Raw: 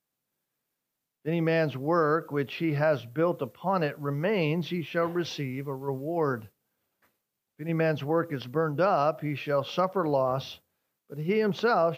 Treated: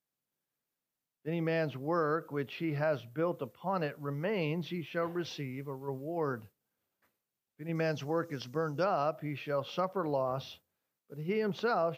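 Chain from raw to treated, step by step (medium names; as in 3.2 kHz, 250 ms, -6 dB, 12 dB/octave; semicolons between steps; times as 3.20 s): 7.75–8.84 s: peaking EQ 5.9 kHz +13 dB 0.85 oct; trim -6.5 dB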